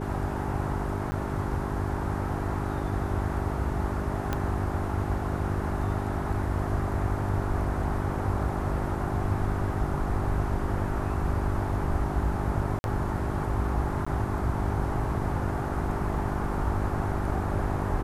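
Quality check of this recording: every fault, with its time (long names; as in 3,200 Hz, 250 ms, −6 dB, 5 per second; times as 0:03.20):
mains hum 50 Hz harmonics 8 −33 dBFS
0:01.11–0:01.12: drop-out 10 ms
0:04.33: click −14 dBFS
0:12.79–0:12.84: drop-out 51 ms
0:14.05–0:14.06: drop-out 15 ms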